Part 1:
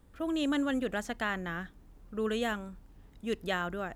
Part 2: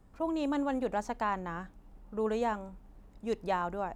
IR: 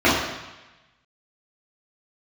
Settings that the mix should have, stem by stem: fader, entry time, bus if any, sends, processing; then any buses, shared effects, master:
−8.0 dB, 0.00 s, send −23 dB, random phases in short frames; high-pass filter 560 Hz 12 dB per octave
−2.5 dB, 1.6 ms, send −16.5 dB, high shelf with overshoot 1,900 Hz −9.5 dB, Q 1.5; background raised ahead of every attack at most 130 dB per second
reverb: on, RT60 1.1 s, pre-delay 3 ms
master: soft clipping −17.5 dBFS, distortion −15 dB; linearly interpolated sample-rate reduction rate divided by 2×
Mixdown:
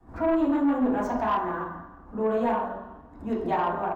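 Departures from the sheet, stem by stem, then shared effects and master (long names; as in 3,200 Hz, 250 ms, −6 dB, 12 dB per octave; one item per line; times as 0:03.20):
stem 1 −8.0 dB → −14.0 dB
stem 2: polarity flipped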